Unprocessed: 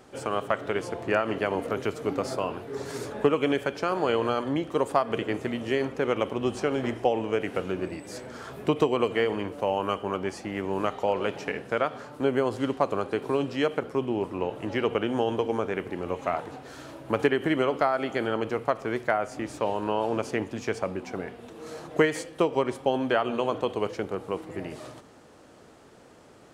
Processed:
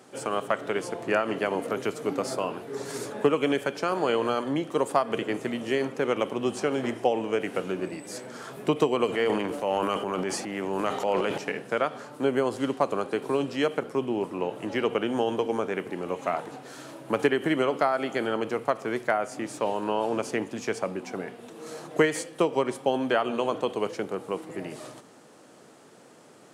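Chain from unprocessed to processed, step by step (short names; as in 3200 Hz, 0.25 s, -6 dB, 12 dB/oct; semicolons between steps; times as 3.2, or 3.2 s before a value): HPF 130 Hz 24 dB/oct; bell 9500 Hz +6 dB 1.2 oct; 9.06–11.38 transient shaper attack -3 dB, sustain +9 dB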